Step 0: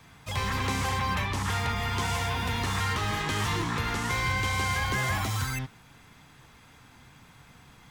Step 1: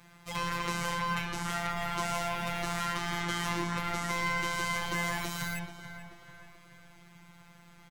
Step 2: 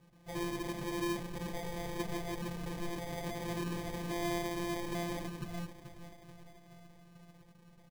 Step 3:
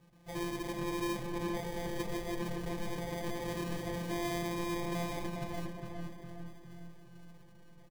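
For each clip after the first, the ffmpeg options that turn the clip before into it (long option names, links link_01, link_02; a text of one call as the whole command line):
ffmpeg -i in.wav -filter_complex "[0:a]afftfilt=real='hypot(re,im)*cos(PI*b)':imag='0':win_size=1024:overlap=0.75,bandreject=frequency=3400:width=21,asplit=2[link_01][link_02];[link_02]adelay=434,lowpass=frequency=3000:poles=1,volume=-10dB,asplit=2[link_03][link_04];[link_04]adelay=434,lowpass=frequency=3000:poles=1,volume=0.53,asplit=2[link_05][link_06];[link_06]adelay=434,lowpass=frequency=3000:poles=1,volume=0.53,asplit=2[link_07][link_08];[link_08]adelay=434,lowpass=frequency=3000:poles=1,volume=0.53,asplit=2[link_09][link_10];[link_10]adelay=434,lowpass=frequency=3000:poles=1,volume=0.53,asplit=2[link_11][link_12];[link_12]adelay=434,lowpass=frequency=3000:poles=1,volume=0.53[link_13];[link_01][link_03][link_05][link_07][link_09][link_11][link_13]amix=inputs=7:normalize=0" out.wav
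ffmpeg -i in.wav -af "lowpass=frequency=1900:width=0.5412,lowpass=frequency=1900:width=1.3066,acrusher=samples=32:mix=1:aa=0.000001" out.wav
ffmpeg -i in.wav -filter_complex "[0:a]asplit=2[link_01][link_02];[link_02]adelay=410,lowpass=frequency=1900:poles=1,volume=-3.5dB,asplit=2[link_03][link_04];[link_04]adelay=410,lowpass=frequency=1900:poles=1,volume=0.46,asplit=2[link_05][link_06];[link_06]adelay=410,lowpass=frequency=1900:poles=1,volume=0.46,asplit=2[link_07][link_08];[link_08]adelay=410,lowpass=frequency=1900:poles=1,volume=0.46,asplit=2[link_09][link_10];[link_10]adelay=410,lowpass=frequency=1900:poles=1,volume=0.46,asplit=2[link_11][link_12];[link_12]adelay=410,lowpass=frequency=1900:poles=1,volume=0.46[link_13];[link_01][link_03][link_05][link_07][link_09][link_11][link_13]amix=inputs=7:normalize=0" out.wav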